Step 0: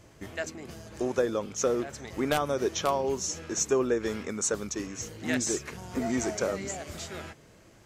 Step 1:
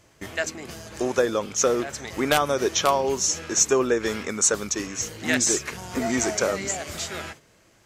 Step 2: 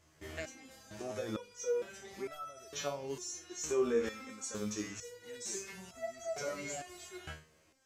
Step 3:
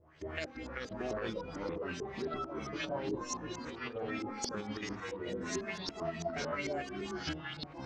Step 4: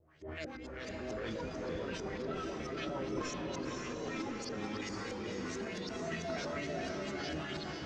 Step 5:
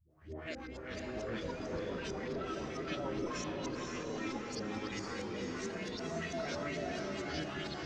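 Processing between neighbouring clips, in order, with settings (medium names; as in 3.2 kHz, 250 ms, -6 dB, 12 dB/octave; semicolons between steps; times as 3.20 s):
gate -49 dBFS, range -8 dB; tilt shelf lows -3.5 dB, about 710 Hz; trim +6 dB
harmonic-percussive split percussive -10 dB; peak limiter -19.5 dBFS, peak gain reduction 8.5 dB; resonator arpeggio 2.2 Hz 78–660 Hz; trim +3 dB
compressor with a negative ratio -40 dBFS, ratio -0.5; LFO low-pass saw up 4.5 Hz 400–5900 Hz; ever faster or slower copies 289 ms, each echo -4 st, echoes 3
rotary cabinet horn 7 Hz, later 0.8 Hz, at 3.50 s; transient shaper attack -7 dB, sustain +10 dB; echo that smears into a reverb 517 ms, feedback 47%, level -3 dB; trim -1 dB
phase dispersion highs, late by 105 ms, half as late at 320 Hz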